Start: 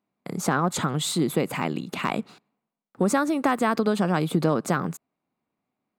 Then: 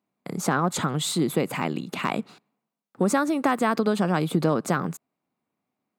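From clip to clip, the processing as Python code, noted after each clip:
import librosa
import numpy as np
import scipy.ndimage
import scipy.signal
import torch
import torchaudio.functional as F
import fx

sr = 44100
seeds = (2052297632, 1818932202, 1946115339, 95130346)

y = scipy.signal.sosfilt(scipy.signal.butter(2, 78.0, 'highpass', fs=sr, output='sos'), x)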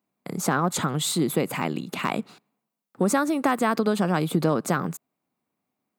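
y = fx.high_shelf(x, sr, hz=11000.0, db=7.5)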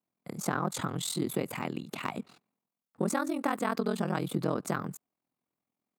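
y = x * np.sin(2.0 * np.pi * 21.0 * np.arange(len(x)) / sr)
y = y * 10.0 ** (-5.0 / 20.0)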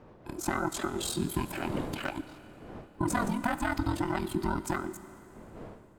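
y = fx.band_invert(x, sr, width_hz=500)
y = fx.dmg_wind(y, sr, seeds[0], corner_hz=500.0, level_db=-45.0)
y = fx.rev_schroeder(y, sr, rt60_s=3.0, comb_ms=29, drr_db=13.0)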